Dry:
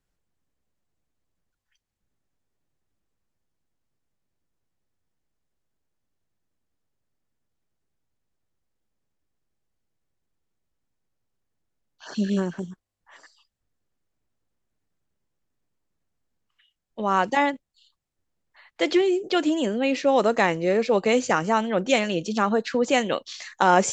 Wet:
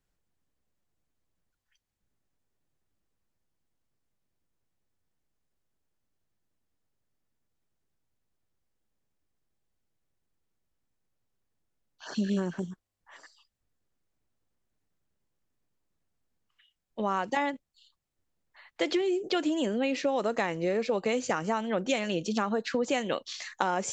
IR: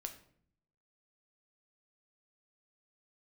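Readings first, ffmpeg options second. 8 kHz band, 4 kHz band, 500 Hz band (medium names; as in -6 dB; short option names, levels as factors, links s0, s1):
-6.5 dB, -5.5 dB, -7.0 dB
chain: -af "acompressor=threshold=0.0708:ratio=6,volume=0.841"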